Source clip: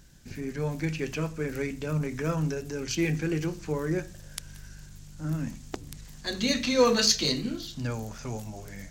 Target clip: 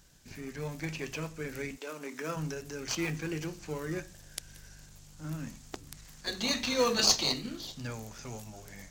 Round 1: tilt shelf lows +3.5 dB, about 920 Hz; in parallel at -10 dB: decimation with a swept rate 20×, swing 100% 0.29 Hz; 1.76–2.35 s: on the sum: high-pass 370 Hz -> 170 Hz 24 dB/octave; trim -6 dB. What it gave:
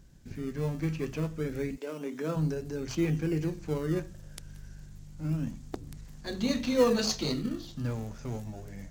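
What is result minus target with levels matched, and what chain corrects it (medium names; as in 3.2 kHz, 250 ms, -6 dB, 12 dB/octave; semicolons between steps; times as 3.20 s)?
1 kHz band -3.0 dB
tilt shelf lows -4.5 dB, about 920 Hz; in parallel at -10 dB: decimation with a swept rate 20×, swing 100% 0.29 Hz; 1.76–2.35 s: on the sum: high-pass 370 Hz -> 170 Hz 24 dB/octave; trim -6 dB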